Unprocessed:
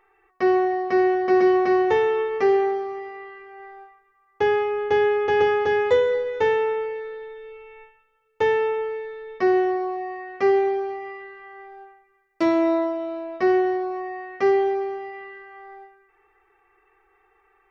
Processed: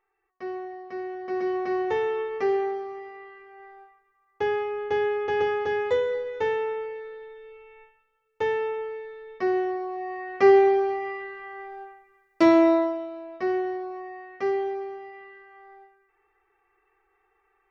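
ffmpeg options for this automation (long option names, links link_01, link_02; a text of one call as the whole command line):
ffmpeg -i in.wav -af "volume=3dB,afade=type=in:start_time=1.08:duration=0.98:silence=0.334965,afade=type=in:start_time=9.89:duration=0.6:silence=0.375837,afade=type=out:start_time=12.56:duration=0.54:silence=0.316228" out.wav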